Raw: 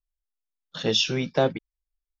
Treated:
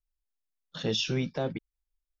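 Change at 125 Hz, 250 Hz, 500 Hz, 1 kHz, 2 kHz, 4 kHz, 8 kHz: -2.0 dB, -3.5 dB, -8.0 dB, -10.5 dB, -7.0 dB, -7.5 dB, n/a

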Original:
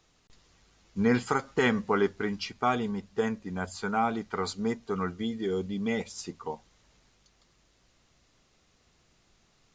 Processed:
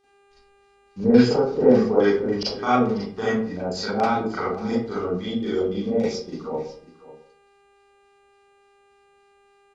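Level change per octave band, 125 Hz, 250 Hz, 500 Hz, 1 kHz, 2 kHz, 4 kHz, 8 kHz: +5.5, +8.5, +10.0, +5.0, +1.5, +6.5, +0.5 dB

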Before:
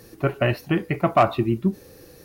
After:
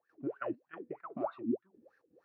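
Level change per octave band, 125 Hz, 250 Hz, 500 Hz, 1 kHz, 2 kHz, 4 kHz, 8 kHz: -30.5 dB, -14.5 dB, -16.5 dB, -21.0 dB, -21.5 dB, under -30 dB, n/a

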